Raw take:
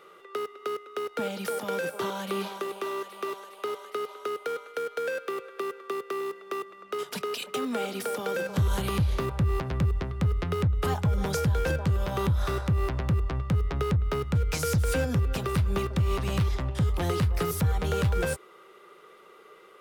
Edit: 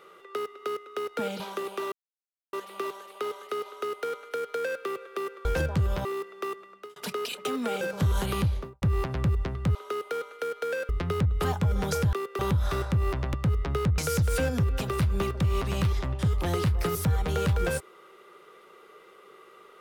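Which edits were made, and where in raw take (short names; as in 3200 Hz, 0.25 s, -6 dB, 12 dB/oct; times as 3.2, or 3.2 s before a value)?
1.4–2.44 cut
2.96 insert silence 0.61 s
4.1–5.24 copy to 10.31
5.88–6.14 swap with 11.55–12.15
6.68–7.05 fade out
7.9–8.37 cut
8.95–9.38 studio fade out
13.1–13.4 cut
14.04–14.54 cut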